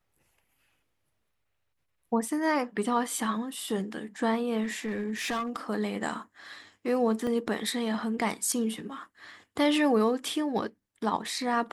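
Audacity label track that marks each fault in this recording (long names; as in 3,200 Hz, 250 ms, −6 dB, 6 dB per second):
4.630000	5.570000	clipping −27 dBFS
7.270000	7.270000	drop-out 2.1 ms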